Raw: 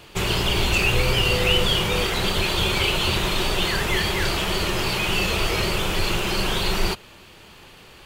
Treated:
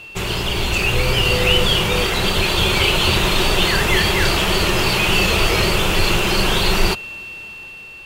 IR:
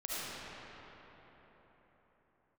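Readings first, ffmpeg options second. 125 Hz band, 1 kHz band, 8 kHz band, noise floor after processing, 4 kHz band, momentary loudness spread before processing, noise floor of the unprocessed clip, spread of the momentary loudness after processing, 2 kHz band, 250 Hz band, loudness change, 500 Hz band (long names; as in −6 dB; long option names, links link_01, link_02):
+4.5 dB, +5.0 dB, +5.0 dB, −37 dBFS, +5.0 dB, 4 LU, −47 dBFS, 10 LU, +5.5 dB, +5.0 dB, +5.0 dB, +5.0 dB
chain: -af "aeval=exprs='val(0)+0.0178*sin(2*PI*2700*n/s)':channel_layout=same,dynaudnorm=framelen=280:gausssize=7:maxgain=7dB"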